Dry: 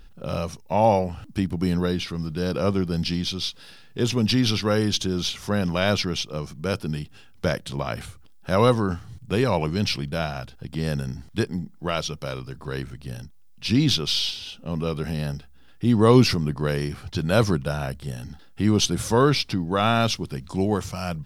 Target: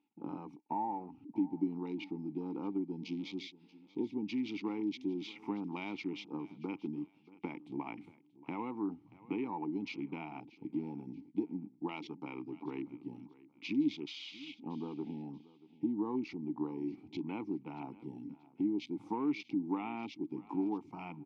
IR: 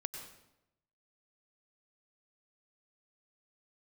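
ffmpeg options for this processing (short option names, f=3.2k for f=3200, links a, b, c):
-filter_complex "[0:a]acompressor=threshold=-29dB:ratio=6,highpass=180,afwtdn=0.00891,asplit=3[a][b][c];[a]bandpass=f=300:t=q:w=8,volume=0dB[d];[b]bandpass=f=870:t=q:w=8,volume=-6dB[e];[c]bandpass=f=2.24k:t=q:w=8,volume=-9dB[f];[d][e][f]amix=inputs=3:normalize=0,asplit=2[g][h];[h]aecho=0:1:632|1264:0.1|0.03[i];[g][i]amix=inputs=2:normalize=0,volume=8.5dB"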